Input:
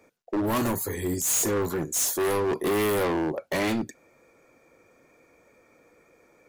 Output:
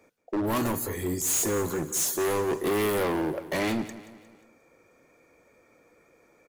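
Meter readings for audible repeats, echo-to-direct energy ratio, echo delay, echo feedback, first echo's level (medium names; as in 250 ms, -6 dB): 4, -14.0 dB, 178 ms, 47%, -15.0 dB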